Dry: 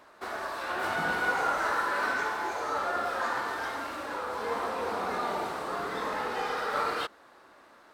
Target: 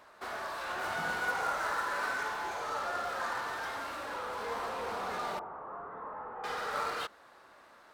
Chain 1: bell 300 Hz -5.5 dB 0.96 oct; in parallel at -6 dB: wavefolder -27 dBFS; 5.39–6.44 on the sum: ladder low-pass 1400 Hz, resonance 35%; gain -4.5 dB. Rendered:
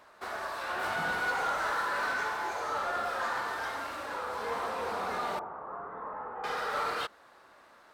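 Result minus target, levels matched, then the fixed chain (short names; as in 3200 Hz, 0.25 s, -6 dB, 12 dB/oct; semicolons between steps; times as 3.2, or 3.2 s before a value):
wavefolder: distortion -21 dB
bell 300 Hz -5.5 dB 0.96 oct; in parallel at -6 dB: wavefolder -36 dBFS; 5.39–6.44 on the sum: ladder low-pass 1400 Hz, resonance 35%; gain -4.5 dB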